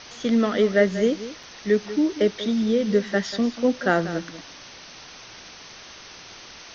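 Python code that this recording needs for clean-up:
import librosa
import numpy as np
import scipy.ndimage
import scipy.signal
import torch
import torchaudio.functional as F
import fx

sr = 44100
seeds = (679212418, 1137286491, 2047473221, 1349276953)

y = fx.fix_interpolate(x, sr, at_s=(1.43,), length_ms=3.4)
y = fx.noise_reduce(y, sr, print_start_s=4.79, print_end_s=5.29, reduce_db=23.0)
y = fx.fix_echo_inverse(y, sr, delay_ms=189, level_db=-14.0)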